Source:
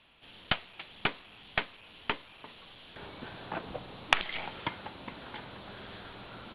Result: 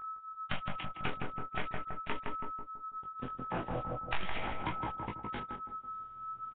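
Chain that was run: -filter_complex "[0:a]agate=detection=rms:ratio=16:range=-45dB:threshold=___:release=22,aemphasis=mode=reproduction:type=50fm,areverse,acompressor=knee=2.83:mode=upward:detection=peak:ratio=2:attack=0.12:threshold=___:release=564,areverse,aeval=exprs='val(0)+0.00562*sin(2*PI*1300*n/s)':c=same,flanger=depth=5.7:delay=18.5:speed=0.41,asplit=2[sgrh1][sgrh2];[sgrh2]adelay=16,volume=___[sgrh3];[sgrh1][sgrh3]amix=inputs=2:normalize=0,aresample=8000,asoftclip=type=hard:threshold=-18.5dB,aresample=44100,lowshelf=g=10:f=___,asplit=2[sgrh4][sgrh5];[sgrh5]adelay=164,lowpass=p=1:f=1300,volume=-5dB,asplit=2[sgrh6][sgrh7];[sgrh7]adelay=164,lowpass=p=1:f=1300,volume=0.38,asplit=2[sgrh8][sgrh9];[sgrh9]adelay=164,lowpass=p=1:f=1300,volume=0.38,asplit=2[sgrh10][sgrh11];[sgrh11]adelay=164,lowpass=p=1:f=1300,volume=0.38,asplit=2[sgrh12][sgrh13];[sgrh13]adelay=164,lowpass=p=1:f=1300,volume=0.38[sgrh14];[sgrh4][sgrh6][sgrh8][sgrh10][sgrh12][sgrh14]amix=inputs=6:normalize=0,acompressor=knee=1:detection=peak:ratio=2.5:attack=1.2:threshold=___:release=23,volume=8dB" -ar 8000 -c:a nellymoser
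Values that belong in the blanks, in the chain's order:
-43dB, -52dB, -10dB, 160, -42dB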